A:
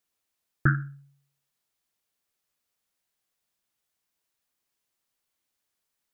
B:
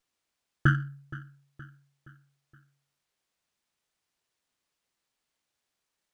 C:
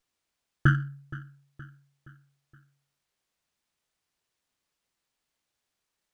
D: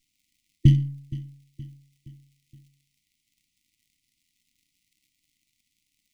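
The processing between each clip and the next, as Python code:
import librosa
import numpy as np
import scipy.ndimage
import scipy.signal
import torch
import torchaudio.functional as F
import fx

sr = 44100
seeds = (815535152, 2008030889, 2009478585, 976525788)

y1 = fx.echo_feedback(x, sr, ms=470, feedback_pct=49, wet_db=-18)
y1 = fx.running_max(y1, sr, window=3)
y2 = fx.low_shelf(y1, sr, hz=120.0, db=4.0)
y3 = np.where(y2 < 0.0, 10.0 ** (-3.0 / 20.0) * y2, y2)
y3 = fx.dmg_crackle(y3, sr, seeds[0], per_s=100.0, level_db=-61.0)
y3 = fx.brickwall_bandstop(y3, sr, low_hz=330.0, high_hz=1900.0)
y3 = F.gain(torch.from_numpy(y3), 8.0).numpy()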